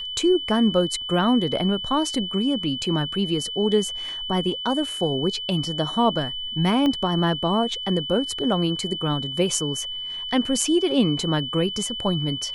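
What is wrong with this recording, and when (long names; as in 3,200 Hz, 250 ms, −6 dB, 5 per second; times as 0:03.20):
whistle 3,000 Hz −29 dBFS
0:06.86: click −13 dBFS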